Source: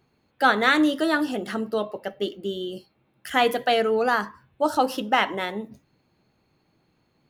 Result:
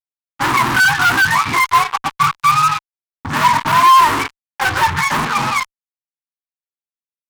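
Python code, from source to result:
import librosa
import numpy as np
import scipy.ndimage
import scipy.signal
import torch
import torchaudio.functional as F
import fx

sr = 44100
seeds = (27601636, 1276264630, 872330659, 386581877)

y = fx.octave_mirror(x, sr, pivot_hz=680.0)
y = fx.fuzz(y, sr, gain_db=37.0, gate_db=-38.0)
y = fx.low_shelf_res(y, sr, hz=770.0, db=-8.5, q=3.0)
y = y * librosa.db_to_amplitude(1.5)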